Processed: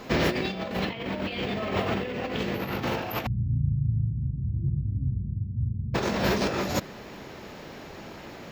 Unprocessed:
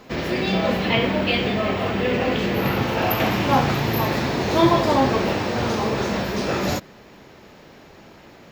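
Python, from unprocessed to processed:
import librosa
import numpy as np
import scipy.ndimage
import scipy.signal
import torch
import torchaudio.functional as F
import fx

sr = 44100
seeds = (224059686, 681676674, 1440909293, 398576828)

y = fx.cheby2_lowpass(x, sr, hz=760.0, order=4, stop_db=80, at=(3.25, 5.94), fade=0.02)
y = fx.over_compress(y, sr, threshold_db=-26.0, ratio=-0.5)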